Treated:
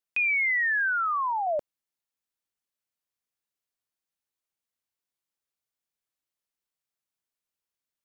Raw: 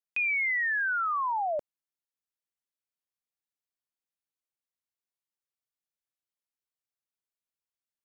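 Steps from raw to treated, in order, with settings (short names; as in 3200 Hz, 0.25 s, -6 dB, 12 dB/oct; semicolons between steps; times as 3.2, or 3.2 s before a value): 0.89–1.47 low shelf 350 Hz -12 dB; gain +3 dB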